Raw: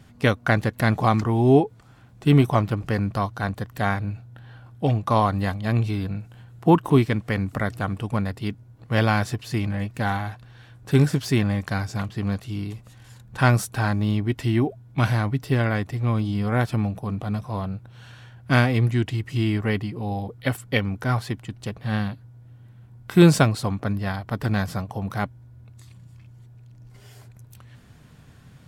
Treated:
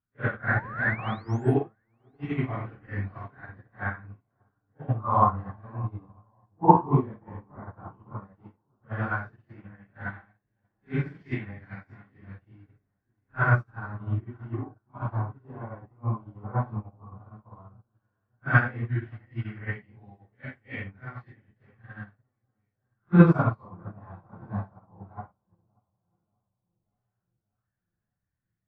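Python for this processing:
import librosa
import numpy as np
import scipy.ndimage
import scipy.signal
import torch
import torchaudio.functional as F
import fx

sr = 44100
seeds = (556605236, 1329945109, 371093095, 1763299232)

p1 = fx.phase_scramble(x, sr, seeds[0], window_ms=200)
p2 = fx.low_shelf(p1, sr, hz=92.0, db=10.0)
p3 = fx.echo_bbd(p2, sr, ms=584, stages=4096, feedback_pct=69, wet_db=-16)
p4 = fx.spec_paint(p3, sr, seeds[1], shape='rise', start_s=0.52, length_s=1.03, low_hz=720.0, high_hz=10000.0, level_db=-27.0)
p5 = fx.filter_lfo_lowpass(p4, sr, shape='sine', hz=0.11, low_hz=980.0, high_hz=2000.0, q=3.4)
p6 = p5 + fx.echo_feedback(p5, sr, ms=947, feedback_pct=38, wet_db=-22.0, dry=0)
p7 = fx.upward_expand(p6, sr, threshold_db=-34.0, expansion=2.5)
y = F.gain(torch.from_numpy(p7), -1.5).numpy()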